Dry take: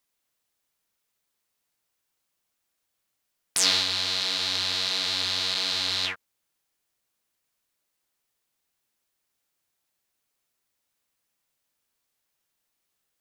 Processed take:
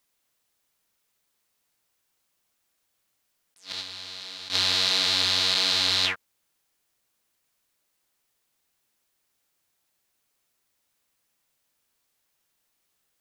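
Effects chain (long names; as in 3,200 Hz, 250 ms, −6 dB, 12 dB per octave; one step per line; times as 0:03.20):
0:03.72–0:04.50: noise gate −20 dBFS, range −16 dB
level that may rise only so fast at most 240 dB per second
level +4 dB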